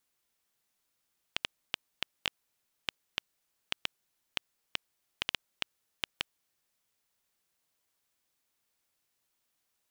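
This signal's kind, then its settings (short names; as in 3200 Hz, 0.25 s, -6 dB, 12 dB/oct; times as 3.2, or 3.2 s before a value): random clicks 3.2/s -10.5 dBFS 5.58 s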